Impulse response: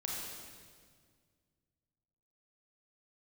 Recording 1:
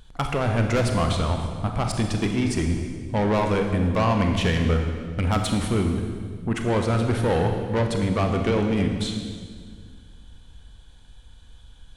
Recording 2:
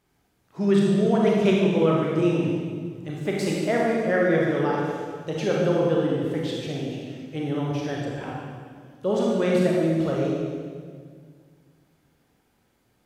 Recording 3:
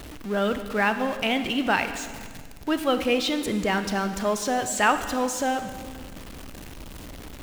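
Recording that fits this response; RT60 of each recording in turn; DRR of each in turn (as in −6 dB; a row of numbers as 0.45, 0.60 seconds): 2; 1.9, 1.9, 1.9 seconds; 3.5, −3.5, 9.0 decibels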